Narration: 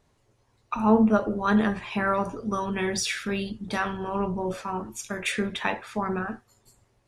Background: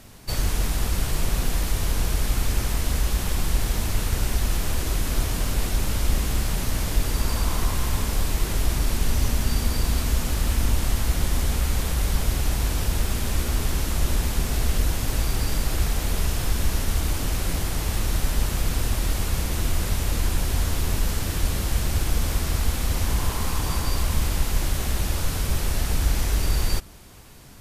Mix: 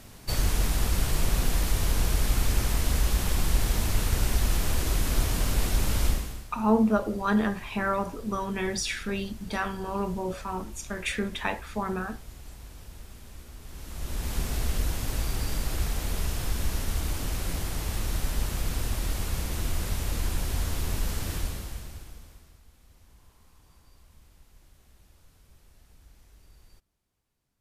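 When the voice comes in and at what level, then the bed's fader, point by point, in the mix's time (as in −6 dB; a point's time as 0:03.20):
5.80 s, −2.5 dB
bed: 0:06.07 −1.5 dB
0:06.50 −21.5 dB
0:13.60 −21.5 dB
0:14.35 −5.5 dB
0:21.35 −5.5 dB
0:22.62 −33.5 dB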